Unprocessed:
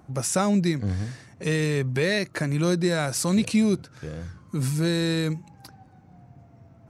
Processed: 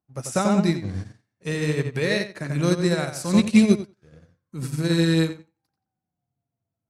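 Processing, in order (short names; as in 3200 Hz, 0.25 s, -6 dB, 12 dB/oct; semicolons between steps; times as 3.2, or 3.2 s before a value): on a send: tape echo 90 ms, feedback 40%, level -3 dB, low-pass 4600 Hz; on the sum: upward expander 2.5:1, over -44 dBFS; gain +6.5 dB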